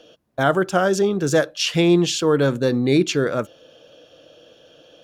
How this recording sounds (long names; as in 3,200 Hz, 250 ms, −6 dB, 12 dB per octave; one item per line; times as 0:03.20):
background noise floor −53 dBFS
spectral slope −5.0 dB per octave